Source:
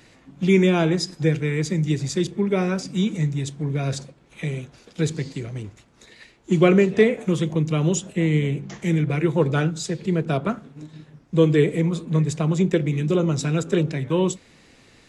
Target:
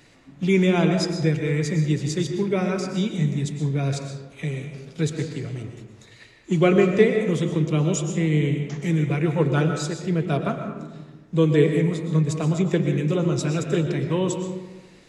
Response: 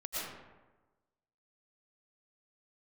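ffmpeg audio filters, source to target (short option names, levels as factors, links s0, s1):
-filter_complex "[0:a]asplit=2[s0][s1];[1:a]atrim=start_sample=2205,adelay=7[s2];[s1][s2]afir=irnorm=-1:irlink=0,volume=0.422[s3];[s0][s3]amix=inputs=2:normalize=0,volume=0.794"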